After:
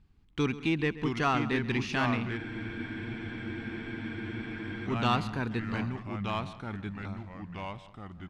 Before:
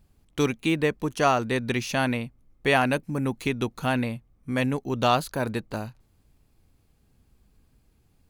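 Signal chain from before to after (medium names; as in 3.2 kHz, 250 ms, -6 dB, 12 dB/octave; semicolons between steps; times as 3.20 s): low-pass 3.8 kHz 12 dB/octave; peaking EQ 580 Hz -13.5 dB 0.61 oct; in parallel at -3.5 dB: saturation -22 dBFS, distortion -12 dB; on the sum: echo from a far wall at 23 m, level -16 dB; ever faster or slower copies 610 ms, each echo -2 st, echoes 3, each echo -6 dB; on a send: feedback delay 209 ms, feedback 38%, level -22 dB; on the sum: spectral freeze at 2.40 s, 2.47 s; trim -6 dB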